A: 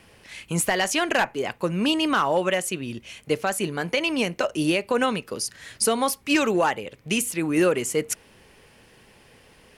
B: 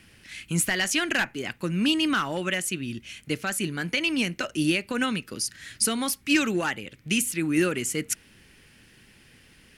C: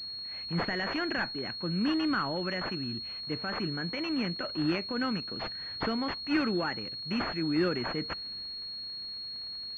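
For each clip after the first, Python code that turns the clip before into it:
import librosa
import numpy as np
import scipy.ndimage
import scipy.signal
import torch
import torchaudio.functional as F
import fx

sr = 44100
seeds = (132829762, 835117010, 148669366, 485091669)

y1 = fx.band_shelf(x, sr, hz=680.0, db=-10.5, octaves=1.7)
y2 = fx.transient(y1, sr, attack_db=-3, sustain_db=3)
y2 = fx.dmg_crackle(y2, sr, seeds[0], per_s=180.0, level_db=-39.0)
y2 = fx.pwm(y2, sr, carrier_hz=4300.0)
y2 = y2 * librosa.db_to_amplitude(-4.0)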